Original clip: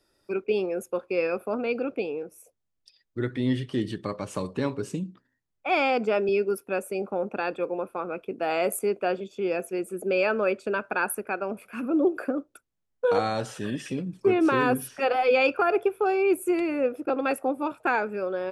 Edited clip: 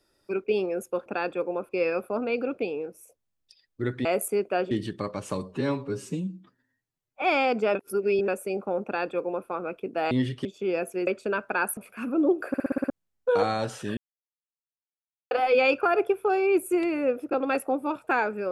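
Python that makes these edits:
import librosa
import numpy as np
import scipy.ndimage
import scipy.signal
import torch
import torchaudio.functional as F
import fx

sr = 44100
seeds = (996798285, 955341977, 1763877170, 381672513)

y = fx.edit(x, sr, fx.swap(start_s=3.42, length_s=0.34, other_s=8.56, other_length_s=0.66),
    fx.stretch_span(start_s=4.47, length_s=1.2, factor=1.5),
    fx.reverse_span(start_s=6.2, length_s=0.53),
    fx.duplicate(start_s=7.29, length_s=0.63, to_s=1.06),
    fx.cut(start_s=9.84, length_s=0.64),
    fx.cut(start_s=11.18, length_s=0.35),
    fx.stutter_over(start_s=12.24, slice_s=0.06, count=7),
    fx.silence(start_s=13.73, length_s=1.34), tone=tone)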